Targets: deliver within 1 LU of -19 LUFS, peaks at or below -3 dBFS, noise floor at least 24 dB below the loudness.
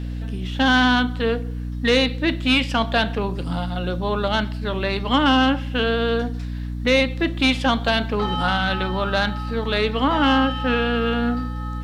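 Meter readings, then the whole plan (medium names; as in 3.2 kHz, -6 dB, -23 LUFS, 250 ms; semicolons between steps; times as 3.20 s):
hum 60 Hz; highest harmonic 300 Hz; hum level -26 dBFS; loudness -21.0 LUFS; peak level -6.5 dBFS; loudness target -19.0 LUFS
-> hum notches 60/120/180/240/300 Hz; trim +2 dB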